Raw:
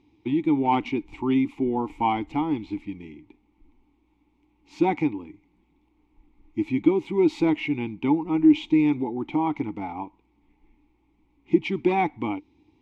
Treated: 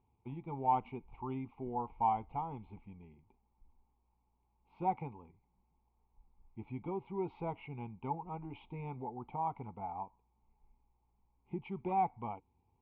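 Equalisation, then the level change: low-pass 2.1 kHz 24 dB/octave; static phaser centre 740 Hz, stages 4; -6.5 dB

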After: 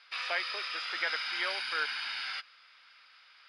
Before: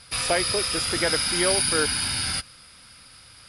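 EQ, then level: high-pass 1.4 kHz 12 dB/octave; low-pass 8.6 kHz 24 dB/octave; distance through air 300 m; 0.0 dB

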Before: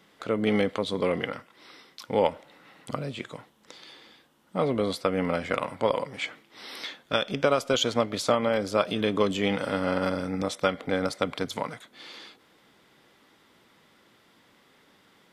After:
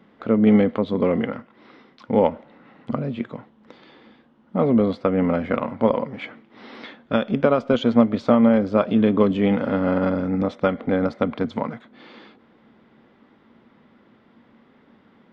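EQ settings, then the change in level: tape spacing loss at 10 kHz 40 dB; peaking EQ 230 Hz +11 dB 0.27 oct; +7.0 dB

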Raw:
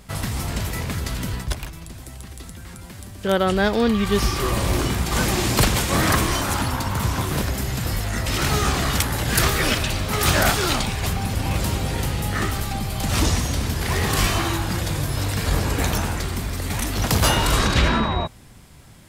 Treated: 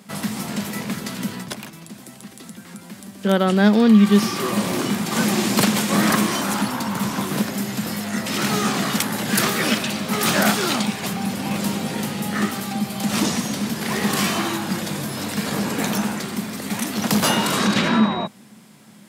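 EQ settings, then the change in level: high-pass 160 Hz 24 dB/octave; peaking EQ 210 Hz +12 dB 0.31 oct; 0.0 dB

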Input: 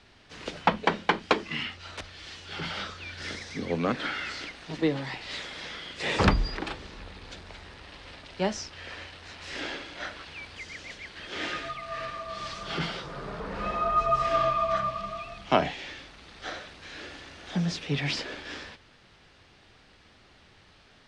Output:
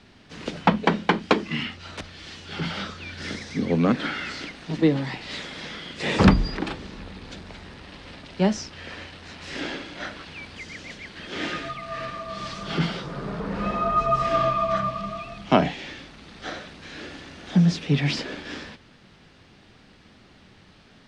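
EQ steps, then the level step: peaking EQ 200 Hz +9 dB 1.5 oct; +2.0 dB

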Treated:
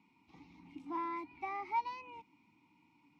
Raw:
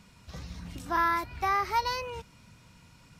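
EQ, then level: vowel filter u; bass shelf 120 Hz -7.5 dB; +3.0 dB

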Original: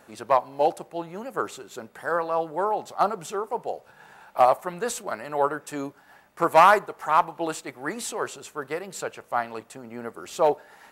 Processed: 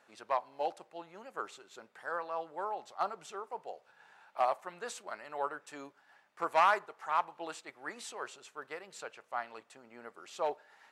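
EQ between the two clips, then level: tape spacing loss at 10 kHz 24 dB; tilt EQ +4.5 dB/octave; -8.5 dB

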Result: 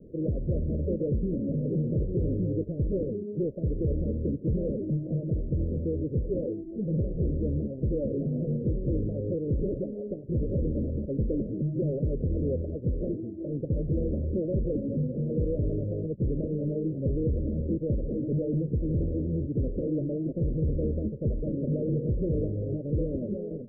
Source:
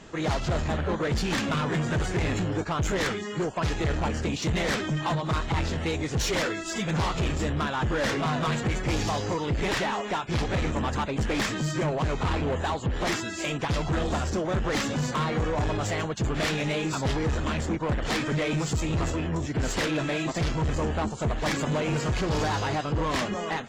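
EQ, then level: steep low-pass 570 Hz 96 dB/octave; 0.0 dB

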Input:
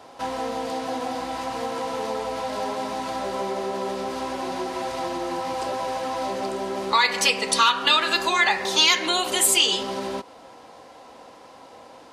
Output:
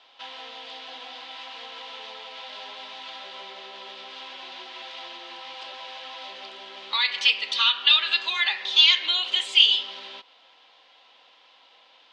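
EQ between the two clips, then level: band-pass filter 3.3 kHz, Q 3.3; distance through air 130 m; +8.0 dB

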